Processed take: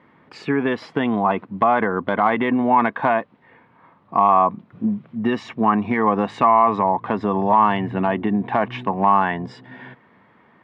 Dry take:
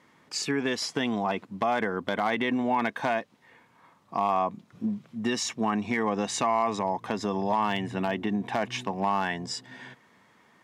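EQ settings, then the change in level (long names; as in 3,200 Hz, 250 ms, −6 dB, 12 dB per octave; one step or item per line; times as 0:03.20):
dynamic equaliser 1,100 Hz, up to +7 dB, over −40 dBFS, Q 2
high-frequency loss of the air 490 metres
+8.5 dB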